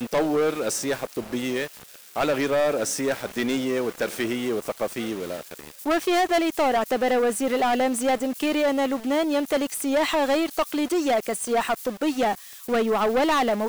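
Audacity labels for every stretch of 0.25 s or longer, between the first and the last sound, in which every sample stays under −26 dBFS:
1.660000	2.170000	silence
5.540000	5.860000	silence
12.340000	12.690000	silence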